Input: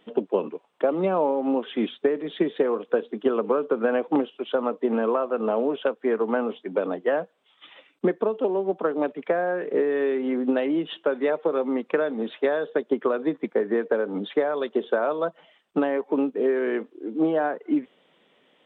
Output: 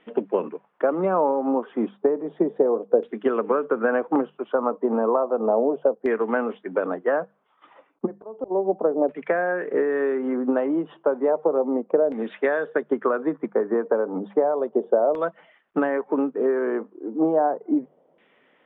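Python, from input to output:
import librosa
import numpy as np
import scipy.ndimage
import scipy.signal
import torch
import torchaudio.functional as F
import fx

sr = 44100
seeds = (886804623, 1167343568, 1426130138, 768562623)

y = fx.filter_lfo_lowpass(x, sr, shape='saw_down', hz=0.33, low_hz=630.0, high_hz=2200.0, q=1.8)
y = fx.auto_swell(y, sr, attack_ms=362.0, at=(8.05, 8.5), fade=0.02)
y = fx.hum_notches(y, sr, base_hz=50, count=4)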